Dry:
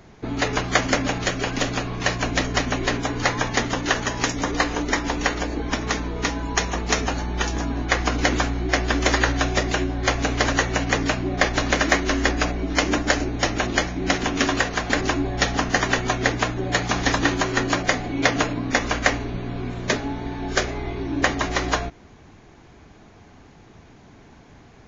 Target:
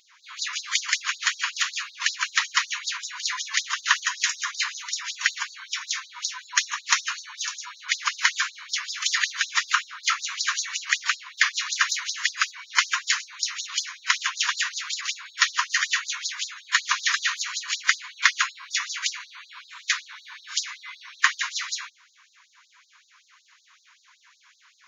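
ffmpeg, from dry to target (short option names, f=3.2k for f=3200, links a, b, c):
-filter_complex "[0:a]asettb=1/sr,asplit=3[a][b][c];[a]atrim=end=9.684[d];[b]atrim=start=9.68:end=10.22,asetpts=PTS-STARTPTS,afade=t=in:d=0.004:c=qsin,afade=t=out:st=0.536:d=0.004:c=qsin,equalizer=f=1.3k:w=6.7:g=12.5[e];[c]atrim=start=10.216[f];[d][e]acrossfade=d=0.004:c1=hsin:c2=qsin[g];[g][f]acrossfade=d=0.004:c1=qsin:c2=hsin,afftfilt=real='re*gte(b*sr/1024,900*pow(3800/900,0.5+0.5*sin(2*PI*5.3*pts/sr)))':imag='im*gte(b*sr/1024,900*pow(3800/900,0.5+0.5*sin(2*PI*5.3*pts/sr)))':win_size=1024:overlap=0.75,volume=2.5dB"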